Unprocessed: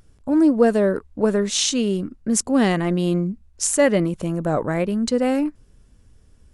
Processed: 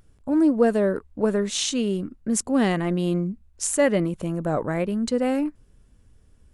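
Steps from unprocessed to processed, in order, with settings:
parametric band 5,400 Hz −3.5 dB 0.76 octaves
level −3 dB

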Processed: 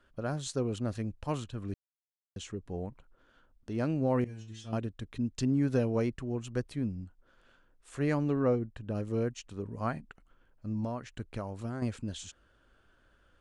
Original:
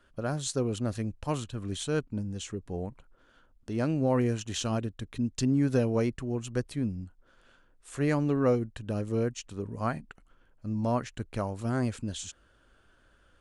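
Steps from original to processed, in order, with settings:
high-shelf EQ 7,600 Hz −8.5 dB
0:01.74–0:02.36: silence
0:04.24–0:04.73: stiff-string resonator 110 Hz, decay 0.51 s, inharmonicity 0.002
0:08.42–0:08.95: high-shelf EQ 3,000 Hz −9 dB
0:10.84–0:11.82: downward compressor 10 to 1, threshold −30 dBFS, peak gain reduction 8 dB
level −2.5 dB

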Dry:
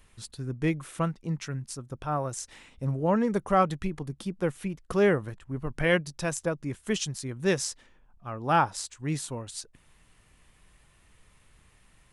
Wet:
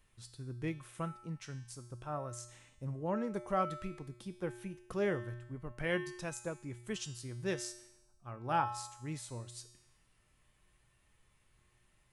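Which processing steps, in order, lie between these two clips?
tuned comb filter 120 Hz, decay 0.91 s, harmonics odd, mix 80%
level +2 dB

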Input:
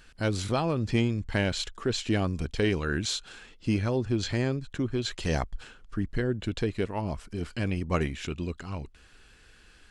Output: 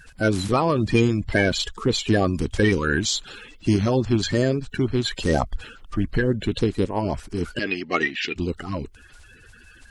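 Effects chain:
spectral magnitudes quantised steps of 30 dB
0:07.59–0:08.36: loudspeaker in its box 340–5,500 Hz, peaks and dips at 530 Hz −8 dB, 1,000 Hz −9 dB, 1,900 Hz +8 dB, 2,700 Hz +9 dB, 4,600 Hz +8 dB
level +7.5 dB

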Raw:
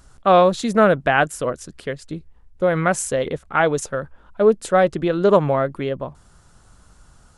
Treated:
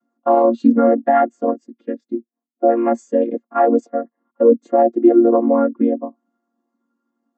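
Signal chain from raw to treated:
channel vocoder with a chord as carrier minor triad, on A#3
boost into a limiter +11 dB
every bin expanded away from the loudest bin 1.5 to 1
level −1 dB

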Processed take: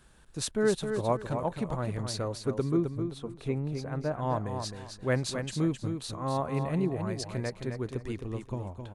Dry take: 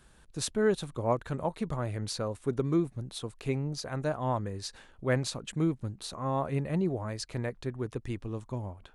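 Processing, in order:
0:02.69–0:04.18: high-shelf EQ 2,400 Hz −11 dB
on a send: repeating echo 263 ms, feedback 24%, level −7 dB

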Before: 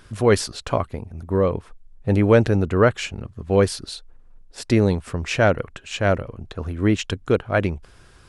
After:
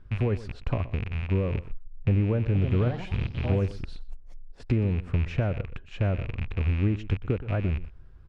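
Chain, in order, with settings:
loose part that buzzes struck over −35 dBFS, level −13 dBFS
downward compressor 6 to 1, threshold −21 dBFS, peak gain reduction 11.5 dB
slap from a distant wall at 21 metres, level −16 dB
0:02.38–0:04.67: delay with pitch and tempo change per echo 174 ms, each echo +4 semitones, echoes 3, each echo −6 dB
high-shelf EQ 5,700 Hz −11 dB
noise gate −40 dBFS, range −6 dB
RIAA equalisation playback
level −8.5 dB

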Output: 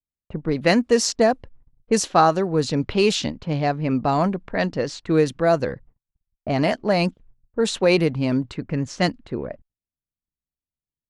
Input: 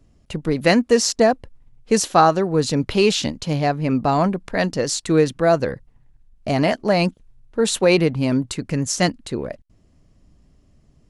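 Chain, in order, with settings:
noise gate −45 dBFS, range −41 dB
low-pass that shuts in the quiet parts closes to 920 Hz, open at −12 dBFS
level −2 dB

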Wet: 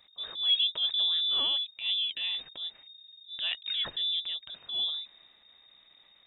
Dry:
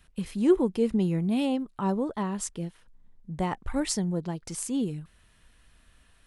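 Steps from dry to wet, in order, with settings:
transient designer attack −9 dB, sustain +3 dB
voice inversion scrambler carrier 3,700 Hz
level −2 dB

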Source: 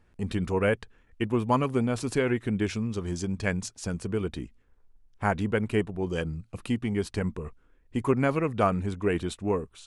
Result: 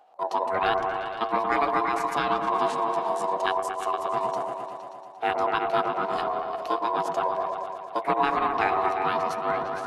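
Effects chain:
low-shelf EQ 210 Hz +9 dB
ring modulation 570 Hz
three-way crossover with the lows and the highs turned down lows −16 dB, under 260 Hz, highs −13 dB, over 7,700 Hz
echo whose low-pass opens from repeat to repeat 116 ms, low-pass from 750 Hz, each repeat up 1 octave, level −3 dB
formants moved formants +5 semitones

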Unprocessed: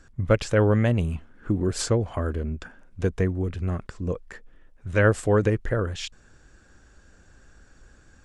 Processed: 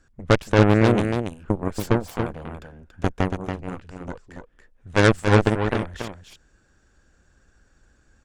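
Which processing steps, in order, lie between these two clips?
harmonic generator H 4 −13 dB, 7 −14 dB, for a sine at −7.5 dBFS
single-tap delay 282 ms −6.5 dB
level +1.5 dB

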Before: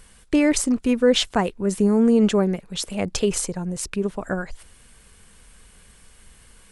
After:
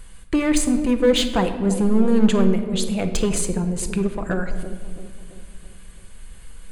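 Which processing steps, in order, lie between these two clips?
in parallel at −7.5 dB: wave folding −19.5 dBFS
on the sum: low-shelf EQ 63 Hz +10 dB
notch filter 5,500 Hz, Q 5.5
delay with a low-pass on its return 333 ms, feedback 50%, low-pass 550 Hz, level −9 dB
rectangular room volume 1,100 cubic metres, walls mixed, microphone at 0.74 metres
level −2 dB

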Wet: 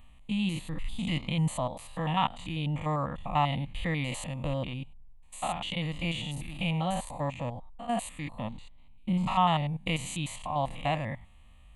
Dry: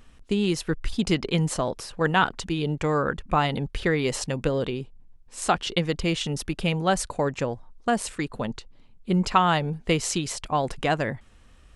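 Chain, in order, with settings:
spectrum averaged block by block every 100 ms
phaser with its sweep stopped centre 1,500 Hz, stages 6

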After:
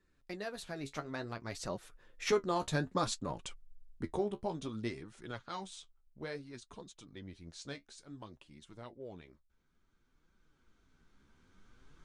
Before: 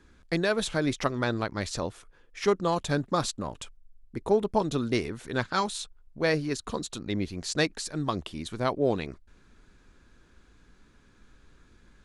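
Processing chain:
camcorder AGC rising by 8.3 dB per second
source passing by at 0:02.90, 25 m/s, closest 22 metres
flanger 0.58 Hz, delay 5 ms, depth 9.8 ms, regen +43%
level −2 dB

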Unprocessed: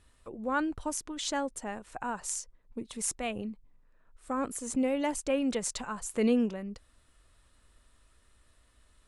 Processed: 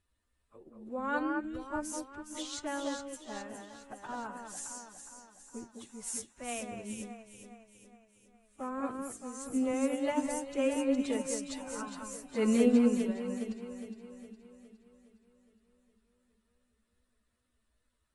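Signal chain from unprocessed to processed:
delay that swaps between a low-pass and a high-pass 103 ms, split 2,300 Hz, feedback 79%, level −3.5 dB
time stretch by phase vocoder 2×
expander for the loud parts 1.5 to 1, over −50 dBFS

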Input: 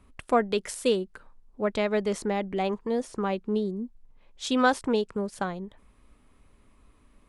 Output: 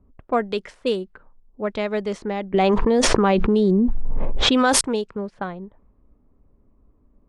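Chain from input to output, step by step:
low-pass that shuts in the quiet parts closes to 570 Hz, open at −20.5 dBFS
0:02.54–0:04.81: envelope flattener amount 100%
level +1.5 dB

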